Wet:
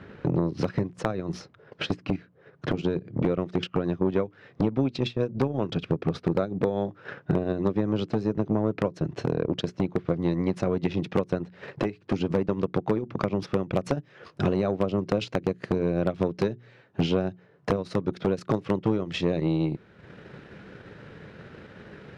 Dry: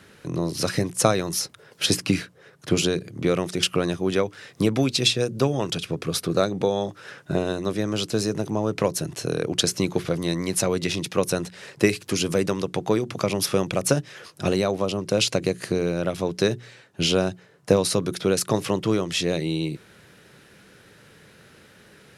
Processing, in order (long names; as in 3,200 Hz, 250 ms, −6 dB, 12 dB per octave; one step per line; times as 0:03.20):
dynamic equaliser 230 Hz, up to +3 dB, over −38 dBFS, Q 1.6
transient designer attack +5 dB, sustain −9 dB
downward compressor 4 to 1, threshold −28 dBFS, peak gain reduction 17.5 dB
head-to-tape spacing loss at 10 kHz 40 dB, from 0:13.71 at 10 kHz 32 dB
wave folding −19.5 dBFS
saturating transformer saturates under 290 Hz
level +8.5 dB